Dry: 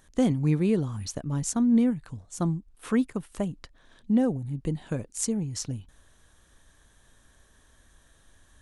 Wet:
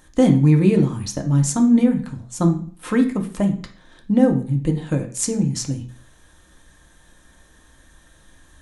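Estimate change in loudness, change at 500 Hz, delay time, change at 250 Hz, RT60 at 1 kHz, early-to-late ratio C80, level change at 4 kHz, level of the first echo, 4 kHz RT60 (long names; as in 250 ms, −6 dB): +8.5 dB, +8.5 dB, no echo audible, +8.0 dB, 0.50 s, 15.5 dB, +7.0 dB, no echo audible, 0.40 s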